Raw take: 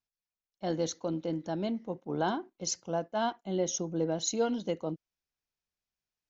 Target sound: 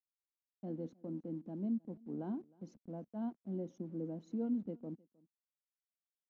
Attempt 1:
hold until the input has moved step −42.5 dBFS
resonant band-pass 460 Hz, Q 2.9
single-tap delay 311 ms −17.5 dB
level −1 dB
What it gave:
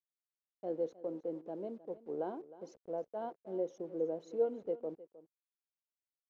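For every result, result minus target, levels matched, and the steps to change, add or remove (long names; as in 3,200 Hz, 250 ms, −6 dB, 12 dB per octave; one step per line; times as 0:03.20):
500 Hz band +8.5 dB; echo-to-direct +8 dB
change: resonant band-pass 230 Hz, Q 2.9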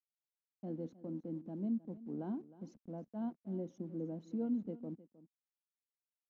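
echo-to-direct +8 dB
change: single-tap delay 311 ms −25.5 dB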